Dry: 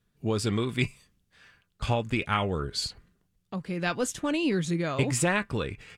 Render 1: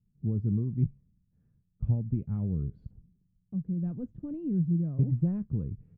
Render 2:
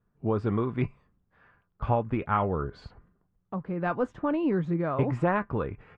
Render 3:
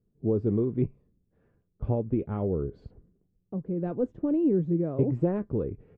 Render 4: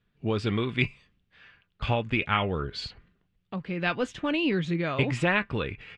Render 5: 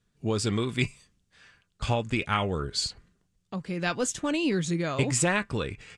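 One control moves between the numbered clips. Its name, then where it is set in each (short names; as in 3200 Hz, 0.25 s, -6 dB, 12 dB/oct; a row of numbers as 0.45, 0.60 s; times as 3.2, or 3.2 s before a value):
synth low-pass, frequency: 170, 1100, 420, 2900, 7900 Hz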